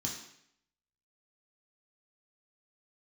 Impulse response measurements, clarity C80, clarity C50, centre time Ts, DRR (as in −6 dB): 7.5 dB, 4.5 dB, 39 ms, −3.0 dB